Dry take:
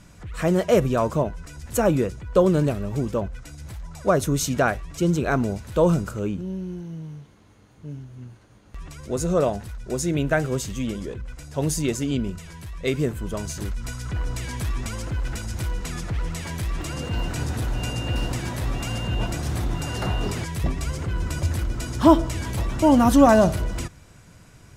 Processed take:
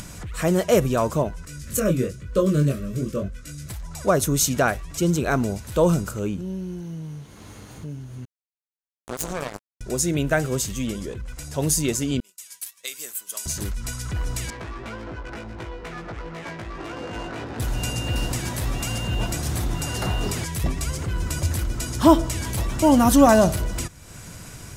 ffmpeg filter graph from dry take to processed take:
-filter_complex "[0:a]asettb=1/sr,asplit=3[s0][s1][s2];[s0]atrim=end=1.454[s3];[s1]atrim=start=1.45:end=3.7,asetpts=PTS-STARTPTS,afade=t=in:d=0.004:c=qsin,afade=t=out:st=2.246:d=0.004:c=qsin,asuperstop=centerf=830:order=8:qfactor=2.1,equalizer=f=160:w=1.3:g=4.5,flanger=delay=20:depth=3.9:speed=1[s4];[s2]atrim=start=3.696[s5];[s3][s4]acrossfade=d=0.004:c1=hsin:c2=qsin[s6];[s6][s5]acrossfade=d=0.004:c1=qsin:c2=hsin,asettb=1/sr,asplit=3[s7][s8][s9];[s7]atrim=end=8.254[s10];[s8]atrim=start=8.25:end=9.81,asetpts=PTS-STARTPTS,afade=t=in:d=0.004:c=qsin,afade=t=out:st=1.556:d=0.004:c=qsin,equalizer=f=66:w=1.5:g=-3,acompressor=threshold=0.0562:ratio=5:attack=3.2:release=140:knee=1:detection=peak,acrusher=bits=3:mix=0:aa=0.5[s11];[s9]atrim=start=9.806[s12];[s10][s11]acrossfade=d=0.004:c1=hsin:c2=qsin[s13];[s13][s12]acrossfade=d=0.004:c1=qsin:c2=hsin,asettb=1/sr,asplit=3[s14][s15][s16];[s14]atrim=end=12.204[s17];[s15]atrim=start=12.2:end=13.46,asetpts=PTS-STARTPTS,afade=t=in:d=0.004:c=qsin,afade=t=out:st=1.256:d=0.004:c=qsin,highpass=f=320:p=1,aderivative,agate=range=0.0224:threshold=0.00316:ratio=3:release=100:detection=peak[s18];[s16]atrim=start=13.456[s19];[s17][s18]acrossfade=d=0.004:c1=hsin:c2=qsin[s20];[s20][s19]acrossfade=d=0.004:c1=qsin:c2=hsin,asettb=1/sr,asplit=3[s21][s22][s23];[s21]atrim=end=14.504[s24];[s22]atrim=start=14.5:end=17.6,asetpts=PTS-STARTPTS,afade=t=in:d=0.004:c=qsin,afade=t=out:st=3.096:d=0.004:c=qsin,acrossover=split=260 4800:gain=0.178 1 0.178[s25][s26][s27];[s25][s26][s27]amix=inputs=3:normalize=0,adynamicsmooth=sensitivity=4.5:basefreq=880,asplit=2[s28][s29];[s29]adelay=18,volume=0.75[s30];[s28][s30]amix=inputs=2:normalize=0,atrim=end_sample=136710[s31];[s23]atrim=start=17.596[s32];[s24][s31]acrossfade=d=0.004:c1=hsin:c2=qsin[s33];[s33][s32]acrossfade=d=0.004:c1=qsin:c2=hsin,acompressor=mode=upward:threshold=0.0316:ratio=2.5,highshelf=f=5500:g=10"

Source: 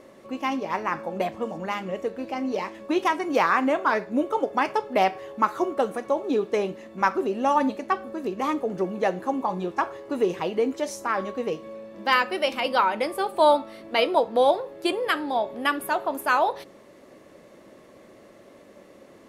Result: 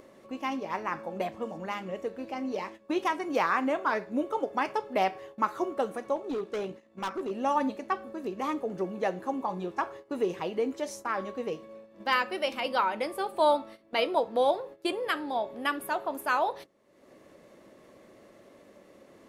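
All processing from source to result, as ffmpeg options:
-filter_complex "[0:a]asettb=1/sr,asplit=3[s0][s1][s2];[s0]atrim=end=6.164[s3];[s1]atrim=start=6.16:end=7.31,asetpts=PTS-STARTPTS,afade=t=in:d=0.004:c=qsin,afade=t=out:st=1.146:d=0.004:c=qsin,lowpass=12000,tremolo=f=58:d=0.333,volume=14.1,asoftclip=hard,volume=0.0708[s4];[s2]atrim=start=7.306[s5];[s3][s4]acrossfade=d=0.004:c1=hsin:c2=qsin[s6];[s6][s5]acrossfade=d=0.004:c1=qsin:c2=hsin,agate=range=0.2:threshold=0.0126:ratio=16:detection=peak,acompressor=mode=upward:threshold=0.0178:ratio=2.5,volume=0.531"

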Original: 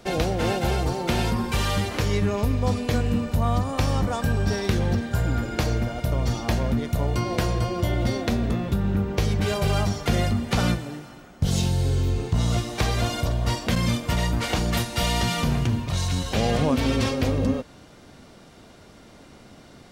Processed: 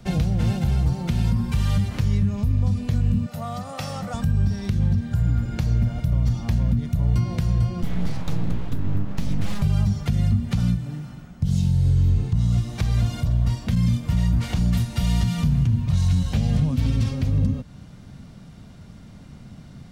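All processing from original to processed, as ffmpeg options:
-filter_complex "[0:a]asettb=1/sr,asplit=3[s0][s1][s2];[s0]atrim=end=3.264[s3];[s1]atrim=start=3.26:end=4.14,asetpts=PTS-STARTPTS,afade=t=in:d=0.004:c=qsin,afade=t=out:st=0.876:d=0.004:c=qsin,highpass=390,aecho=1:1:1.5:0.57,atrim=end_sample=38808[s4];[s2]atrim=start=4.136[s5];[s3][s4]acrossfade=d=0.004:c1=hsin:c2=qsin[s6];[s6][s5]acrossfade=d=0.004:c1=qsin:c2=hsin,asettb=1/sr,asplit=3[s7][s8][s9];[s7]atrim=end=7.824[s10];[s8]atrim=start=7.82:end=9.62,asetpts=PTS-STARTPTS,afade=t=in:d=0.004:c=qsin,afade=t=out:st=1.796:d=0.004:c=qsin,highpass=69,aeval=exprs='abs(val(0))':c=same[s11];[s9]atrim=start=9.616[s12];[s10][s11]acrossfade=d=0.004:c1=hsin:c2=qsin[s13];[s13][s12]acrossfade=d=0.004:c1=qsin:c2=hsin,lowshelf=f=250:t=q:w=1.5:g=12,acrossover=split=250|3000[s14][s15][s16];[s15]acompressor=threshold=0.0501:ratio=6[s17];[s14][s17][s16]amix=inputs=3:normalize=0,alimiter=limit=0.376:level=0:latency=1:release=349,volume=0.668"

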